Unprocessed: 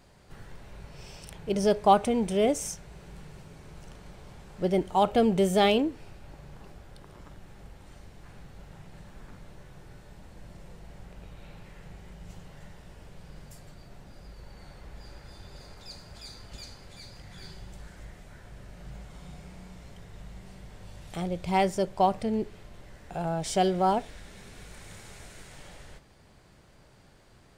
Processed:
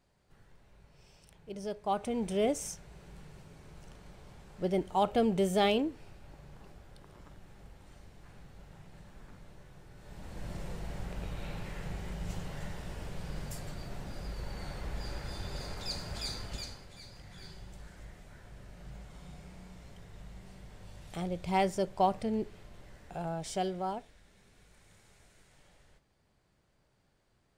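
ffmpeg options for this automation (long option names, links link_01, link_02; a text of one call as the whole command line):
ffmpeg -i in.wav -af "volume=7dB,afade=type=in:start_time=1.84:duration=0.47:silence=0.334965,afade=type=in:start_time=9.95:duration=0.58:silence=0.251189,afade=type=out:start_time=16.29:duration=0.58:silence=0.281838,afade=type=out:start_time=22.9:duration=1.23:silence=0.281838" out.wav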